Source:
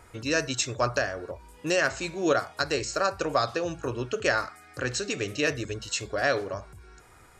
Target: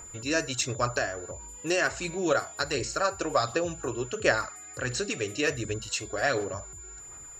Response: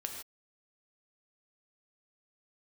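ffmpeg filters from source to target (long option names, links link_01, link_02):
-af "aphaser=in_gain=1:out_gain=1:delay=3:decay=0.37:speed=1.4:type=sinusoidal,aeval=exprs='val(0)+0.00891*sin(2*PI*7100*n/s)':channel_layout=same,volume=-2dB"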